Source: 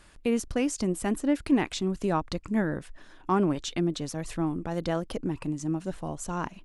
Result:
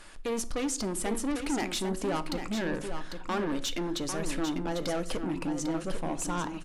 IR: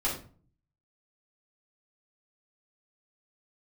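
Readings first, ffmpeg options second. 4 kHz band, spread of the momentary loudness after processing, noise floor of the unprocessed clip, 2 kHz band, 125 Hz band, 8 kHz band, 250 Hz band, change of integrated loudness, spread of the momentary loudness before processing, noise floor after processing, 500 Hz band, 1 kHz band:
+3.0 dB, 3 LU, −52 dBFS, 0.0 dB, −6.0 dB, +3.5 dB, −4.5 dB, −3.0 dB, 8 LU, −40 dBFS, −2.5 dB, −2.0 dB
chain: -filter_complex "[0:a]equalizer=frequency=87:width_type=o:width=2.5:gain=-10,asplit=2[link_01][link_02];[link_02]alimiter=limit=-23dB:level=0:latency=1:release=225,volume=-1dB[link_03];[link_01][link_03]amix=inputs=2:normalize=0,asoftclip=type=tanh:threshold=-28.5dB,aecho=1:1:798:0.422,asplit=2[link_04][link_05];[1:a]atrim=start_sample=2205[link_06];[link_05][link_06]afir=irnorm=-1:irlink=0,volume=-18dB[link_07];[link_04][link_07]amix=inputs=2:normalize=0,aresample=32000,aresample=44100"

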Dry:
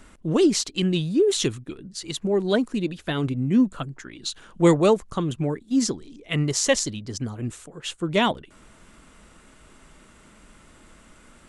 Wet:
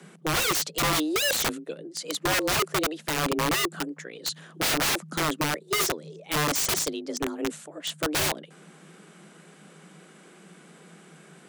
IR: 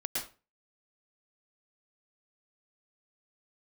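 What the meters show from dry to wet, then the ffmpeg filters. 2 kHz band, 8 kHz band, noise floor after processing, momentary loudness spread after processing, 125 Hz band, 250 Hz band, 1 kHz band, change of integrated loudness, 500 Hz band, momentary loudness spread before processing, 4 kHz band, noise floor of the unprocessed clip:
+5.0 dB, +1.5 dB, −53 dBFS, 11 LU, −8.5 dB, −9.0 dB, +2.5 dB, −2.5 dB, −7.5 dB, 14 LU, +2.5 dB, −53 dBFS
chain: -af "afreqshift=150,aeval=exprs='(mod(9.44*val(0)+1,2)-1)/9.44':channel_layout=same"

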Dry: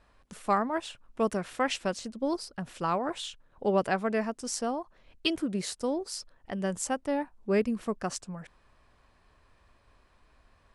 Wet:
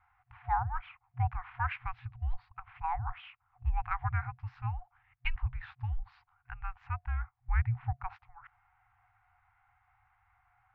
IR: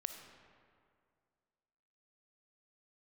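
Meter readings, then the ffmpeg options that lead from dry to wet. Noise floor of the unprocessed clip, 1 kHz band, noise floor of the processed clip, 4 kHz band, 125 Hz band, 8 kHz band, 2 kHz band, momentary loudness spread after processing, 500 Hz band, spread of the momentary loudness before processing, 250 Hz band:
−65 dBFS, −3.5 dB, −76 dBFS, −17.5 dB, +7.0 dB, below −40 dB, −4.0 dB, 14 LU, below −30 dB, 11 LU, below −25 dB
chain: -af "highpass=frequency=170:width_type=q:width=0.5412,highpass=frequency=170:width_type=q:width=1.307,lowpass=frequency=2600:width_type=q:width=0.5176,lowpass=frequency=2600:width_type=q:width=0.7071,lowpass=frequency=2600:width_type=q:width=1.932,afreqshift=-350,afftfilt=real='re*(1-between(b*sr/4096,120,720))':imag='im*(1-between(b*sr/4096,120,720))':win_size=4096:overlap=0.75"

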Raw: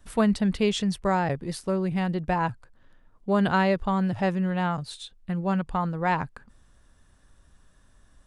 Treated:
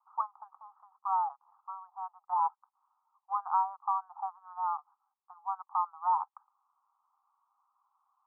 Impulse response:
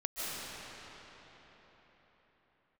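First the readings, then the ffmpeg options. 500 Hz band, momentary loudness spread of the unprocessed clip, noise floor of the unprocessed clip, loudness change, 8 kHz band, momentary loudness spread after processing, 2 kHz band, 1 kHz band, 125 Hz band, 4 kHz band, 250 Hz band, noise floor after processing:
below −30 dB, 9 LU, −59 dBFS, −8.0 dB, can't be measured, 14 LU, below −25 dB, −1.5 dB, below −40 dB, below −40 dB, below −40 dB, below −85 dBFS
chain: -af "asuperpass=centerf=1000:order=12:qfactor=2"

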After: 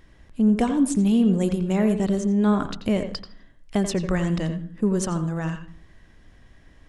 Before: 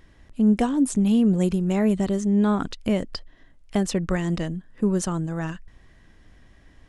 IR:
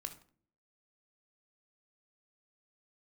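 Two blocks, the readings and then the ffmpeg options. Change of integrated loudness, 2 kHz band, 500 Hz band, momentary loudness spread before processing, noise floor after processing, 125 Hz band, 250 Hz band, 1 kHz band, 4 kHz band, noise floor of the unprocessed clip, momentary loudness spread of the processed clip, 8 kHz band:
0.0 dB, +0.5 dB, +0.5 dB, 12 LU, −53 dBFS, +0.5 dB, 0.0 dB, +0.5 dB, +0.5 dB, −55 dBFS, 10 LU, 0.0 dB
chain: -filter_complex "[0:a]asplit=2[link_01][link_02];[1:a]atrim=start_sample=2205,lowpass=4600,adelay=86[link_03];[link_02][link_03]afir=irnorm=-1:irlink=0,volume=-5dB[link_04];[link_01][link_04]amix=inputs=2:normalize=0"

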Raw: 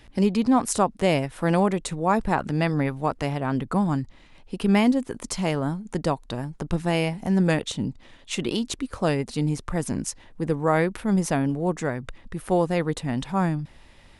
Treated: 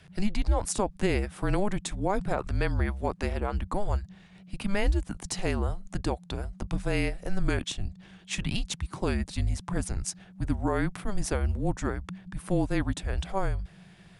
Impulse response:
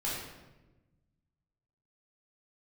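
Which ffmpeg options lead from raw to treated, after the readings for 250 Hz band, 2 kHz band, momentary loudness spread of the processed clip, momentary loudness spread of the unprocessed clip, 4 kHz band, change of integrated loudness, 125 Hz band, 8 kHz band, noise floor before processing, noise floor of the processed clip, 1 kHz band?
−9.0 dB, −4.5 dB, 8 LU, 10 LU, −4.0 dB, −6.0 dB, −4.0 dB, −3.0 dB, −52 dBFS, −54 dBFS, −8.0 dB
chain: -af "afreqshift=-200,alimiter=limit=-13dB:level=0:latency=1:release=67,volume=-2.5dB"

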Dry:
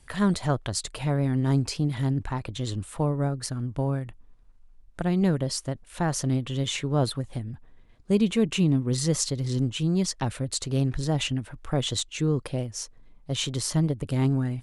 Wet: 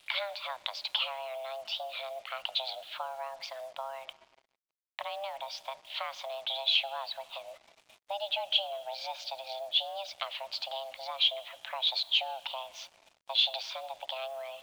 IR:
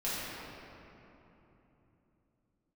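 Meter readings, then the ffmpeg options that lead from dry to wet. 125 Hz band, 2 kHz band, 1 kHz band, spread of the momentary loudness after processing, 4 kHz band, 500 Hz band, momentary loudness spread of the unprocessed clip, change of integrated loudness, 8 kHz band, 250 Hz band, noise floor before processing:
below −40 dB, −1.0 dB, −1.0 dB, 14 LU, +4.5 dB, −8.5 dB, 9 LU, −6.0 dB, −21.5 dB, below −40 dB, −53 dBFS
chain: -filter_complex "[0:a]acompressor=threshold=-32dB:ratio=8,highpass=frequency=220:width_type=q:width=0.5412,highpass=frequency=220:width_type=q:width=1.307,lowpass=frequency=3100:width_type=q:width=0.5176,lowpass=frequency=3100:width_type=q:width=0.7071,lowpass=frequency=3100:width_type=q:width=1.932,afreqshift=400,aexciter=amount=7.1:drive=6.3:freq=2700,asplit=2[link_01][link_02];[1:a]atrim=start_sample=2205[link_03];[link_02][link_03]afir=irnorm=-1:irlink=0,volume=-24dB[link_04];[link_01][link_04]amix=inputs=2:normalize=0,acrusher=bits=8:mix=0:aa=0.5"

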